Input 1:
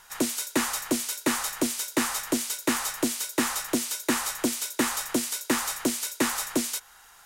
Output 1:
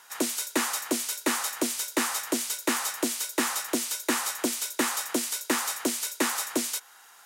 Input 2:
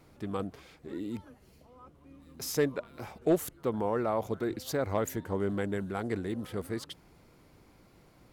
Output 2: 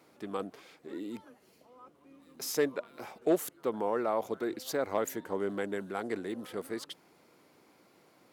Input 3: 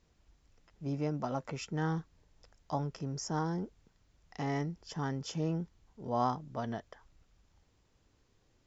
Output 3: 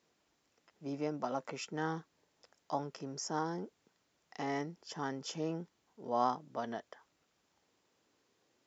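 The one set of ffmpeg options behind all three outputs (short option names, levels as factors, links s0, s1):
-af "highpass=270"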